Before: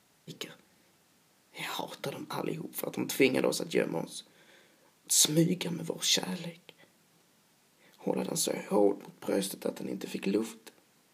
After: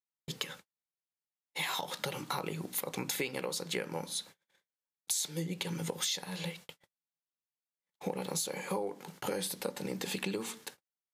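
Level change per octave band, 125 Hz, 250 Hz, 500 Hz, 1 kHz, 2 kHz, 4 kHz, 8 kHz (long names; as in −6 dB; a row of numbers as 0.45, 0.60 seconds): −4.5, −8.0, −7.5, −0.5, −1.5, −4.0, −5.0 decibels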